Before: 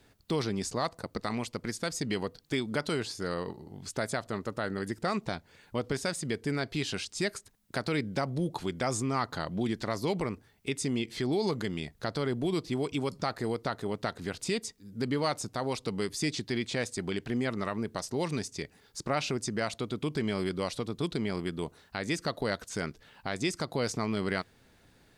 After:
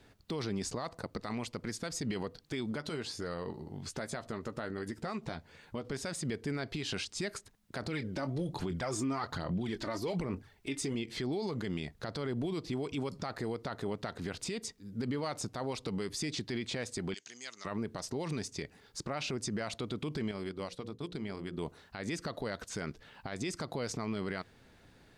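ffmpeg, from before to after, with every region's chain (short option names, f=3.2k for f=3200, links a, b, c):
-filter_complex "[0:a]asettb=1/sr,asplit=3[a][b][c];[a]atrim=end=2.714[d];[b]atrim=start=2.71:end=5.85,asetpts=PTS-STARTPTS,afade=t=in:d=0.004:c=qsin,afade=t=out:st=3.136:d=0.004:c=qsin,acompressor=threshold=-36dB:ratio=4:attack=3.2:release=140:knee=1:detection=peak,asplit=2[e][f];[f]adelay=13,volume=-10.5dB[g];[e][g]amix=inputs=2:normalize=0,atrim=end_sample=138474[h];[c]atrim=start=5.846[i];[d][h]acrossfade=d=0.004:c1=hsin:c2=qsin[j];[j][i]acrossfade=d=0.004:c1=qsin:c2=hsin,asettb=1/sr,asplit=3[k][l][m];[k]atrim=end=7.824[n];[l]atrim=start=7.82:end=10.95,asetpts=PTS-STARTPTS,afade=t=in:d=0.004:c=qsin,afade=t=out:st=3.126:d=0.004:c=qsin,asplit=2[o][p];[p]adelay=22,volume=-13dB[q];[o][q]amix=inputs=2:normalize=0,atrim=end_sample=138033,aphaser=in_gain=1:out_gain=1:delay=3.4:decay=0.53:speed=1.2:type=sinusoidal[r];[m]atrim=start=10.946[s];[n][r]acrossfade=d=0.004:c1=hsin:c2=qsin[t];[t][s]acrossfade=d=0.004:c1=qsin:c2=hsin,asettb=1/sr,asplit=3[u][v][w];[u]atrim=end=17.144[x];[v]atrim=start=17.14:end=17.65,asetpts=PTS-STARTPTS,afade=t=in:d=0.004:c=qsin,afade=t=out:st=0.506:d=0.004:c=qsin,lowpass=f=6.5k:t=q:w=10,aderivative[y];[w]atrim=start=17.646[z];[x][y]acrossfade=d=0.004:c1=hsin:c2=qsin[aa];[aa][z]acrossfade=d=0.004:c1=qsin:c2=hsin,asettb=1/sr,asplit=3[ab][ac][ad];[ab]atrim=end=20.314[ae];[ac]atrim=start=20.31:end=21.58,asetpts=PTS-STARTPTS,afade=t=in:d=0.004:c=qsin,afade=t=out:st=1.266:d=0.004:c=qsin,bandreject=f=60:t=h:w=6,bandreject=f=120:t=h:w=6,bandreject=f=180:t=h:w=6,bandreject=f=240:t=h:w=6,bandreject=f=300:t=h:w=6,bandreject=f=360:t=h:w=6,bandreject=f=420:t=h:w=6,bandreject=f=480:t=h:w=6,bandreject=f=540:t=h:w=6,acompressor=threshold=-35dB:ratio=4:attack=3.2:release=140:knee=1:detection=peak,agate=range=-33dB:threshold=-37dB:ratio=3:release=100:detection=peak[af];[ad]atrim=start=21.576[ag];[ae][af]acrossfade=d=0.004:c1=hsin:c2=qsin[ah];[ah][ag]acrossfade=d=0.004:c1=qsin:c2=hsin,highshelf=f=7.5k:g=-8.5,alimiter=level_in=4.5dB:limit=-24dB:level=0:latency=1:release=49,volume=-4.5dB,volume=1.5dB"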